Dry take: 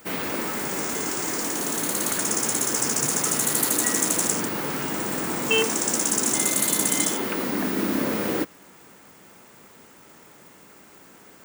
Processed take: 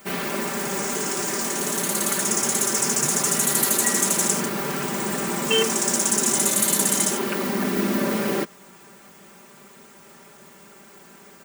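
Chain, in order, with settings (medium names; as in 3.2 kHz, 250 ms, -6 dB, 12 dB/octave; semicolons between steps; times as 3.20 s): comb 5.1 ms, depth 81%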